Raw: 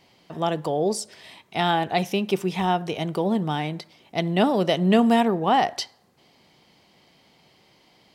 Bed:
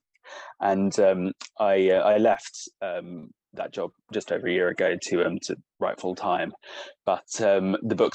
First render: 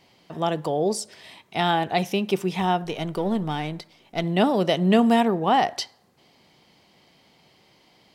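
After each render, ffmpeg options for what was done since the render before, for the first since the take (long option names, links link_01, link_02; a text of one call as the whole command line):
ffmpeg -i in.wav -filter_complex "[0:a]asettb=1/sr,asplit=3[link_01][link_02][link_03];[link_01]atrim=end=2.844[link_04];[link_02]atrim=start=2.84:end=4.24,asetpts=PTS-STARTPTS,afade=type=in:duration=0.004:curve=qsin,afade=type=out:start_time=1.396:duration=0.004:curve=qsin,aeval=exprs='if(lt(val(0),0),0.708*val(0),val(0))':channel_layout=same[link_05];[link_03]atrim=start=4.236[link_06];[link_04][link_05]acrossfade=duration=0.004:curve1=hsin:curve2=qsin[link_07];[link_07][link_06]acrossfade=duration=0.004:curve1=qsin:curve2=hsin" out.wav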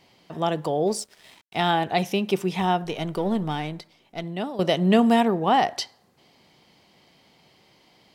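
ffmpeg -i in.wav -filter_complex "[0:a]asettb=1/sr,asplit=3[link_01][link_02][link_03];[link_01]atrim=end=0.874[link_04];[link_02]atrim=start=0.87:end=1.67,asetpts=PTS-STARTPTS,afade=type=in:duration=0.004:curve=qsin,afade=type=out:start_time=0.796:duration=0.004:curve=qsin,aeval=exprs='sgn(val(0))*max(abs(val(0))-0.00355,0)':channel_layout=same[link_05];[link_03]atrim=start=1.666[link_06];[link_04][link_05]acrossfade=duration=0.004:curve1=hsin:curve2=qsin[link_07];[link_07][link_06]acrossfade=duration=0.004:curve1=qsin:curve2=hsin,asplit=2[link_08][link_09];[link_08]atrim=end=4.59,asetpts=PTS-STARTPTS,afade=type=out:start_time=3.5:duration=1.09:silence=0.199526[link_10];[link_09]atrim=start=4.59,asetpts=PTS-STARTPTS,afade=type=in:duration=0.004:curve=hsin:silence=0.199526[link_11];[link_10][link_11]concat=n=2:v=0:a=1" out.wav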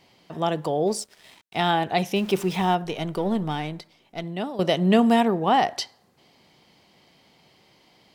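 ffmpeg -i in.wav -filter_complex "[0:a]asettb=1/sr,asplit=3[link_01][link_02][link_03];[link_01]atrim=end=2.164[link_04];[link_02]atrim=start=2.16:end=2.75,asetpts=PTS-STARTPTS,afade=type=in:duration=0.004:curve=qsin,afade=type=out:start_time=0.586:duration=0.004:curve=qsin,aeval=exprs='val(0)+0.5*0.0158*sgn(val(0))':channel_layout=same[link_05];[link_03]atrim=start=2.746[link_06];[link_04][link_05]acrossfade=duration=0.004:curve1=hsin:curve2=qsin[link_07];[link_07][link_06]acrossfade=duration=0.004:curve1=qsin:curve2=hsin" out.wav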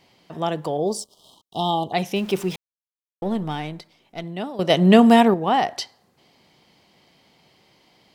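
ffmpeg -i in.wav -filter_complex "[0:a]asplit=3[link_01][link_02][link_03];[link_01]afade=type=out:start_time=0.77:duration=0.02[link_04];[link_02]asuperstop=centerf=1900:order=20:qfactor=1.1,afade=type=in:start_time=0.77:duration=0.02,afade=type=out:start_time=1.92:duration=0.02[link_05];[link_03]afade=type=in:start_time=1.92:duration=0.02[link_06];[link_04][link_05][link_06]amix=inputs=3:normalize=0,asplit=5[link_07][link_08][link_09][link_10][link_11];[link_07]atrim=end=2.56,asetpts=PTS-STARTPTS,afade=type=out:start_time=2.556:duration=0.004:curve=hsin[link_12];[link_08]atrim=start=2.56:end=3.22,asetpts=PTS-STARTPTS,volume=0[link_13];[link_09]atrim=start=3.22:end=4.702,asetpts=PTS-STARTPTS,afade=type=in:duration=0.004:curve=hsin[link_14];[link_10]atrim=start=4.698:end=5.342,asetpts=PTS-STARTPTS,volume=5.5dB[link_15];[link_11]atrim=start=5.338[link_16];[link_12][link_13][link_14]concat=n=3:v=0:a=1[link_17];[link_17][link_15]acrossfade=duration=0.004:curve1=hsin:curve2=hsin[link_18];[link_18][link_16]acrossfade=duration=0.004:curve1=hsin:curve2=hsin" out.wav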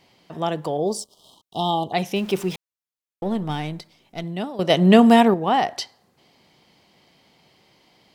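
ffmpeg -i in.wav -filter_complex "[0:a]asettb=1/sr,asplit=3[link_01][link_02][link_03];[link_01]atrim=end=3.494[link_04];[link_02]atrim=start=3.49:end=4.45,asetpts=PTS-STARTPTS,afade=type=in:duration=0.004:curve=qsin,afade=type=out:start_time=0.956:duration=0.004:curve=qsin,bass=frequency=250:gain=4,treble=frequency=4000:gain=4[link_05];[link_03]atrim=start=4.446[link_06];[link_04][link_05]acrossfade=duration=0.004:curve1=hsin:curve2=qsin[link_07];[link_07][link_06]acrossfade=duration=0.004:curve1=qsin:curve2=hsin" out.wav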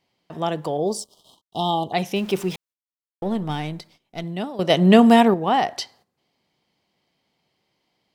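ffmpeg -i in.wav -af "agate=range=-14dB:threshold=-52dB:ratio=16:detection=peak" out.wav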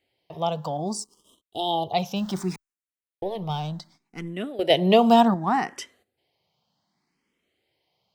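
ffmpeg -i in.wav -filter_complex "[0:a]asplit=2[link_01][link_02];[link_02]afreqshift=0.66[link_03];[link_01][link_03]amix=inputs=2:normalize=1" out.wav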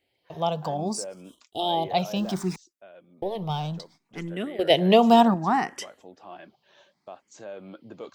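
ffmpeg -i in.wav -i bed.wav -filter_complex "[1:a]volume=-18.5dB[link_01];[0:a][link_01]amix=inputs=2:normalize=0" out.wav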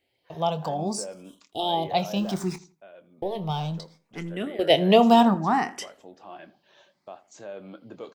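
ffmpeg -i in.wav -filter_complex "[0:a]asplit=2[link_01][link_02];[link_02]adelay=25,volume=-13dB[link_03];[link_01][link_03]amix=inputs=2:normalize=0,asplit=2[link_04][link_05];[link_05]adelay=81,lowpass=frequency=2200:poles=1,volume=-17.5dB,asplit=2[link_06][link_07];[link_07]adelay=81,lowpass=frequency=2200:poles=1,volume=0.3,asplit=2[link_08][link_09];[link_09]adelay=81,lowpass=frequency=2200:poles=1,volume=0.3[link_10];[link_04][link_06][link_08][link_10]amix=inputs=4:normalize=0" out.wav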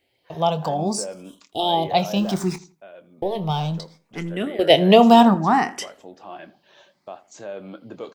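ffmpeg -i in.wav -af "volume=5dB,alimiter=limit=-2dB:level=0:latency=1" out.wav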